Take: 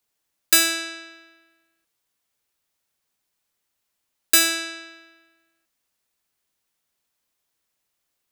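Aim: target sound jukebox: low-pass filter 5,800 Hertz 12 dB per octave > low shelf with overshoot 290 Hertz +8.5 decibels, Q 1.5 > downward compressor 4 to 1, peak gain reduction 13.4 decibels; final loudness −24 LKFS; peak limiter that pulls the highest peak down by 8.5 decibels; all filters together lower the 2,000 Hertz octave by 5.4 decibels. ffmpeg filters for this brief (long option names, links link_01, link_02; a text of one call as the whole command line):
ffmpeg -i in.wav -af "equalizer=frequency=2000:width_type=o:gain=-7,alimiter=limit=-12dB:level=0:latency=1,lowpass=5800,lowshelf=frequency=290:width_type=q:width=1.5:gain=8.5,acompressor=threshold=-38dB:ratio=4,volume=16.5dB" out.wav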